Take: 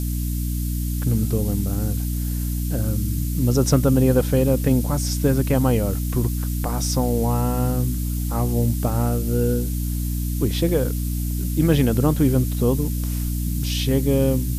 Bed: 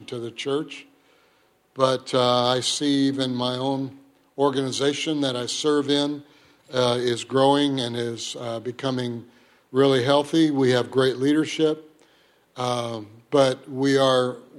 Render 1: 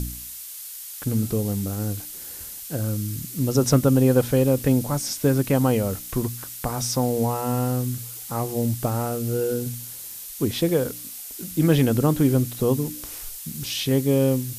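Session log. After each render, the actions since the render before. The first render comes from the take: de-hum 60 Hz, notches 5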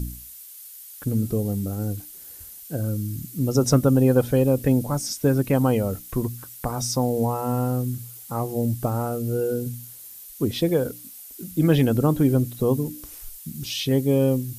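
denoiser 9 dB, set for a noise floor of -37 dBFS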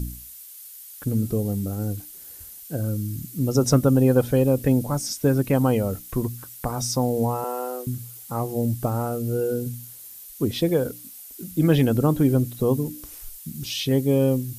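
7.44–7.87 steep high-pass 310 Hz 48 dB/oct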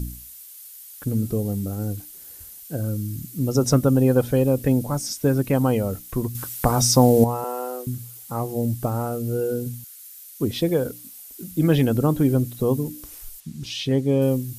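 6.35–7.24 gain +8 dB; 9.84–10.4 Chebyshev high-pass 1200 Hz, order 8; 13.4–14.22 air absorption 57 m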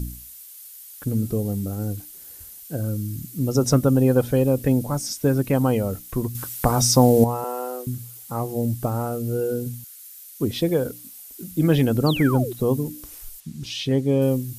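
12.06–12.53 painted sound fall 330–4900 Hz -30 dBFS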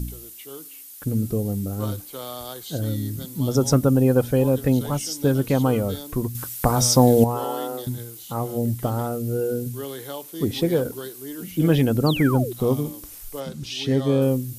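add bed -15.5 dB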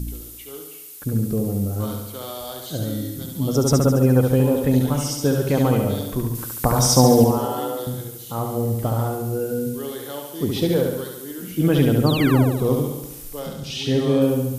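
flutter echo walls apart 12 m, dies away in 0.93 s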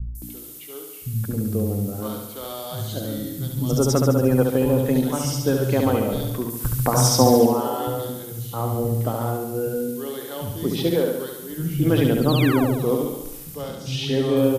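three bands offset in time lows, highs, mids 0.15/0.22 s, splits 160/5800 Hz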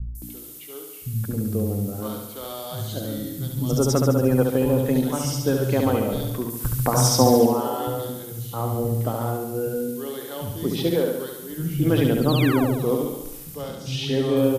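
gain -1 dB

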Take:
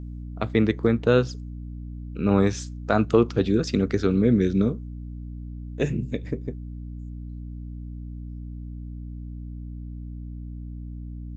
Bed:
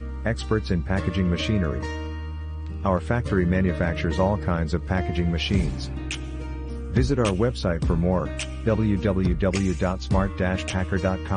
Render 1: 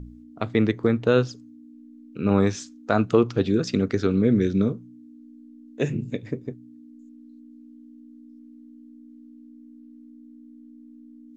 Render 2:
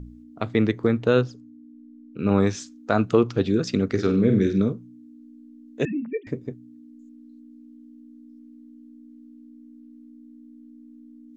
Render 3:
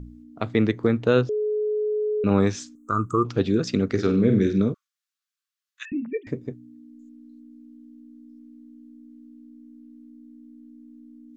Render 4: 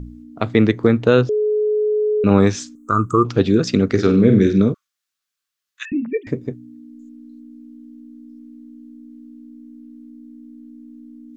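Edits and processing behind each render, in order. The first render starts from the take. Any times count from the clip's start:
de-hum 60 Hz, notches 3
1.21–2.19 high shelf 2100 Hz -10.5 dB; 3.87–4.6 flutter echo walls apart 8 m, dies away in 0.36 s; 5.85–6.27 sine-wave speech
1.29–2.24 bleep 424 Hz -21.5 dBFS; 2.75–3.25 EQ curve 110 Hz 0 dB, 230 Hz -8 dB, 350 Hz -2 dB, 760 Hz -23 dB, 1200 Hz +11 dB, 1700 Hz -21 dB, 2600 Hz -28 dB, 4400 Hz -23 dB, 7900 Hz +10 dB, 11000 Hz +5 dB; 4.74–5.92 rippled Chebyshev high-pass 1100 Hz, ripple 3 dB
gain +6.5 dB; limiter -2 dBFS, peak gain reduction 2 dB

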